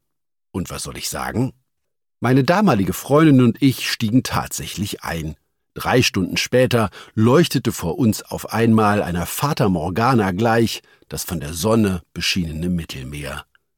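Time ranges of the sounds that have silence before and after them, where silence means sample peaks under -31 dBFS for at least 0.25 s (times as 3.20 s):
0.55–1.50 s
2.22–5.33 s
5.76–10.79 s
11.11–13.40 s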